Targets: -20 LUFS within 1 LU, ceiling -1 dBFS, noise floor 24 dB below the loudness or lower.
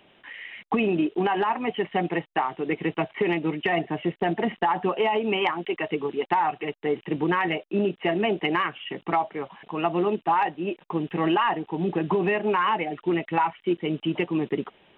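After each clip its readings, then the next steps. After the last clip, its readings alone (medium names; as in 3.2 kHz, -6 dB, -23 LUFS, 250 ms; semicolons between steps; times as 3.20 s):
loudness -26.0 LUFS; peak level -9.0 dBFS; loudness target -20.0 LUFS
-> trim +6 dB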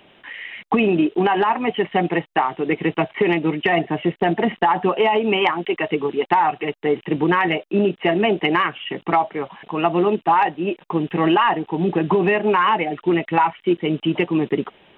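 loudness -20.0 LUFS; peak level -3.0 dBFS; noise floor -55 dBFS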